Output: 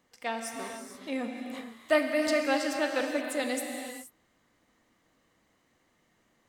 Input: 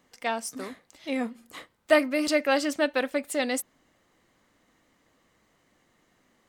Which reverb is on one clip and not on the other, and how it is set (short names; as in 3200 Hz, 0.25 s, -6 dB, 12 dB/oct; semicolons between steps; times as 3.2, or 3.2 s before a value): non-linear reverb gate 0.5 s flat, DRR 2.5 dB; gain -5 dB